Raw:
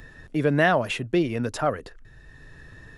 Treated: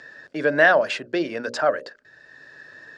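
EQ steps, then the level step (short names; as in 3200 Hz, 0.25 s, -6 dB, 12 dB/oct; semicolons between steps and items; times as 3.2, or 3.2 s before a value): speaker cabinet 290–7700 Hz, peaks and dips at 580 Hz +8 dB, 1600 Hz +10 dB, 4700 Hz +9 dB; notches 60/120/180/240/300/360/420/480/540/600 Hz; 0.0 dB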